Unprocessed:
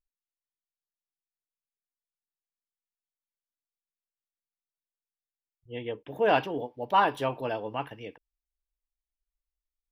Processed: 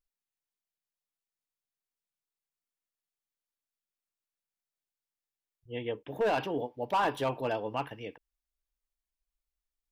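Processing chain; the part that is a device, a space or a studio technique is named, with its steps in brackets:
limiter into clipper (brickwall limiter −17.5 dBFS, peak gain reduction 7.5 dB; hard clipping −22.5 dBFS, distortion −16 dB)

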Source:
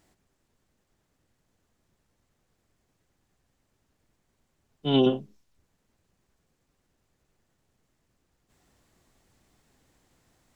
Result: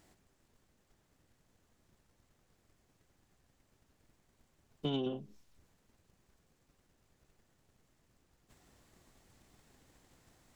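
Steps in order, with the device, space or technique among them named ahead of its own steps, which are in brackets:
drum-bus smash (transient designer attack +7 dB, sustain +3 dB; downward compressor 8 to 1, threshold −32 dBFS, peak gain reduction 17.5 dB; soft clipping −23.5 dBFS, distortion −23 dB)

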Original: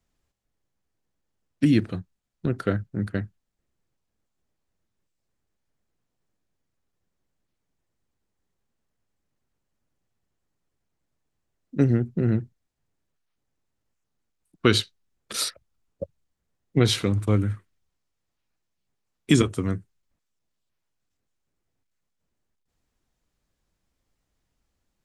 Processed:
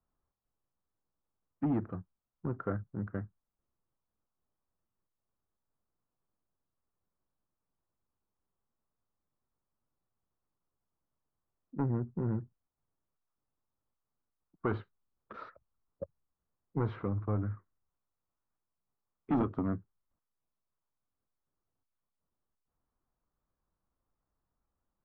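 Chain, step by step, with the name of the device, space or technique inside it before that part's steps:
0:19.32–0:19.76: octave-band graphic EQ 250/4,000/8,000 Hz +8/+10/+6 dB
overdriven synthesiser ladder filter (soft clipping −16 dBFS, distortion −9 dB; transistor ladder low-pass 1,400 Hz, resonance 45%)

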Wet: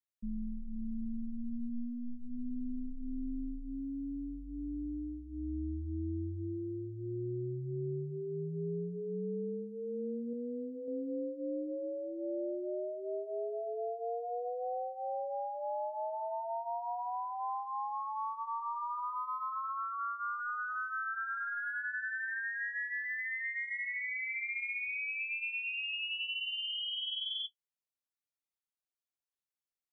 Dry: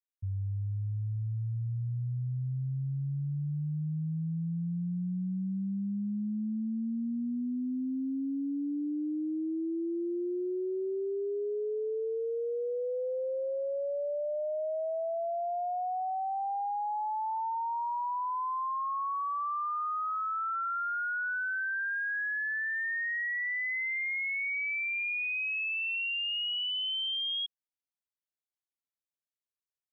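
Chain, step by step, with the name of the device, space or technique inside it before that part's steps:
alien voice (ring modulation 120 Hz; flanger 0.38 Hz, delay 8.1 ms, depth 6.6 ms, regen −35%)
0:10.33–0:10.88: parametric band 360 Hz −6.5 dB 0.89 octaves
level +2 dB

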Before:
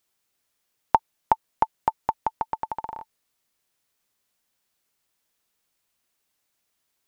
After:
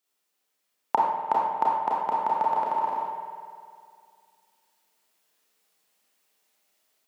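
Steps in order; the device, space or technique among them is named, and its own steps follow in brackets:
spring reverb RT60 2.3 s, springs 49 ms, chirp 40 ms, DRR 5 dB
far laptop microphone (convolution reverb RT60 0.70 s, pre-delay 28 ms, DRR −3 dB; high-pass filter 190 Hz 24 dB per octave; automatic gain control gain up to 6.5 dB)
level −6.5 dB

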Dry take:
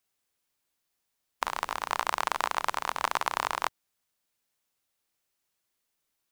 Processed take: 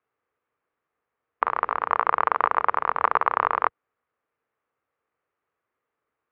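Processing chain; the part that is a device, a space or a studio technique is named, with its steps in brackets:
bass cabinet (loudspeaker in its box 68–2,100 Hz, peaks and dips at 190 Hz −7 dB, 460 Hz +9 dB, 1,200 Hz +7 dB)
level +4.5 dB

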